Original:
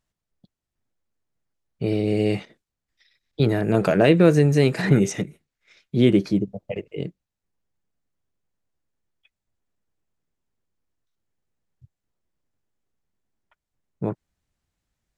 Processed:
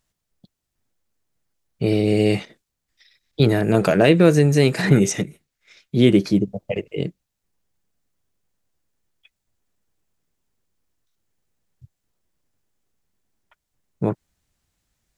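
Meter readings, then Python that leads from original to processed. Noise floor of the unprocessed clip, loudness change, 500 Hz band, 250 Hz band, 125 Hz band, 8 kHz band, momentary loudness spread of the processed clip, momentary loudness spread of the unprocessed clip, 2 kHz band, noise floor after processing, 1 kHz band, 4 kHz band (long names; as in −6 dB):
below −85 dBFS, +2.0 dB, +2.0 dB, +2.5 dB, +2.0 dB, +7.0 dB, 14 LU, 18 LU, +3.5 dB, −80 dBFS, +2.5 dB, +5.0 dB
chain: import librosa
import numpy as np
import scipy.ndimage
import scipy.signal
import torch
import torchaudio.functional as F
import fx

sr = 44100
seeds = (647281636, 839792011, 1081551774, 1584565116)

p1 = fx.high_shelf(x, sr, hz=3700.0, db=6.0)
p2 = fx.rider(p1, sr, range_db=3, speed_s=0.5)
p3 = p1 + (p2 * librosa.db_to_amplitude(1.5))
y = p3 * librosa.db_to_amplitude(-4.0)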